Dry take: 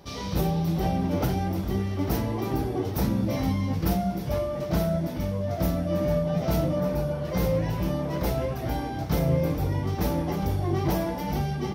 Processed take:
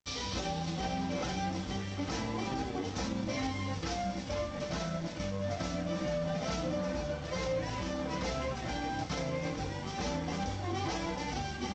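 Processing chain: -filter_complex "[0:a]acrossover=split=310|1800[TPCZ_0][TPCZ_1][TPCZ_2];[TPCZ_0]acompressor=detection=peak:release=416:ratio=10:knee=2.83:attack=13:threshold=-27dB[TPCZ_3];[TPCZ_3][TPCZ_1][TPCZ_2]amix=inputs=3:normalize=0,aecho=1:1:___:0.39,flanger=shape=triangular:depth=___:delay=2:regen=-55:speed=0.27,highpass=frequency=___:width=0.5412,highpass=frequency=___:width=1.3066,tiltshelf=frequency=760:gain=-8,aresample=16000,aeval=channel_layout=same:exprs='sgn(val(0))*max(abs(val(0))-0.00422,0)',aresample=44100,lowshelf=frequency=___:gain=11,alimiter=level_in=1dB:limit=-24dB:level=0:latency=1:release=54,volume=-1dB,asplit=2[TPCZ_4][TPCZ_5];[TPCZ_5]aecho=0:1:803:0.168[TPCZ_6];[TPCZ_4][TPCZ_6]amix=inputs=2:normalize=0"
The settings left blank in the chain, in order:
3.9, 5.1, 62, 62, 270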